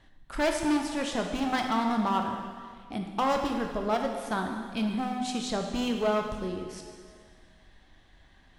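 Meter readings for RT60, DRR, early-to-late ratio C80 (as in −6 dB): 2.0 s, 3.0 dB, 6.0 dB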